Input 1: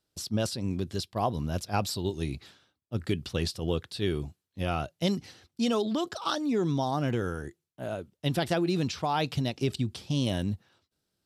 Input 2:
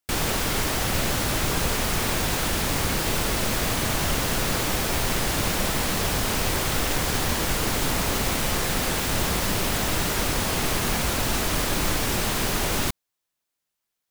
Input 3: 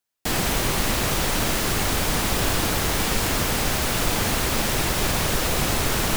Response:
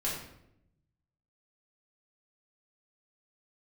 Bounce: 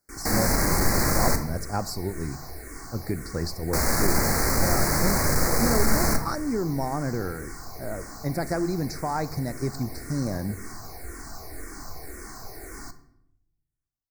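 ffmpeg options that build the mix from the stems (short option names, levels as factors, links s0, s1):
-filter_complex "[0:a]volume=0.944,asplit=2[s0][s1];[s1]volume=0.1[s2];[1:a]aecho=1:1:2.7:0.56,asplit=2[s3][s4];[s4]afreqshift=-1.9[s5];[s3][s5]amix=inputs=2:normalize=1,volume=0.168,asplit=2[s6][s7];[s7]volume=0.211[s8];[2:a]asoftclip=type=tanh:threshold=0.0562,volume=1.19,asplit=3[s9][s10][s11];[s9]atrim=end=1.36,asetpts=PTS-STARTPTS,afade=t=out:st=1.356:d=0.004:c=hsin[s12];[s10]atrim=start=1.36:end=3.73,asetpts=PTS-STARTPTS,volume=0[s13];[s11]atrim=start=3.73,asetpts=PTS-STARTPTS,afade=t=in:d=0.004:c=hsin[s14];[s12][s13][s14]concat=n=3:v=0:a=1,asplit=2[s15][s16];[s16]volume=0.447[s17];[3:a]atrim=start_sample=2205[s18];[s2][s8][s17]amix=inputs=3:normalize=0[s19];[s19][s18]afir=irnorm=-1:irlink=0[s20];[s0][s6][s15][s20]amix=inputs=4:normalize=0,asuperstop=centerf=3100:order=8:qfactor=1.4"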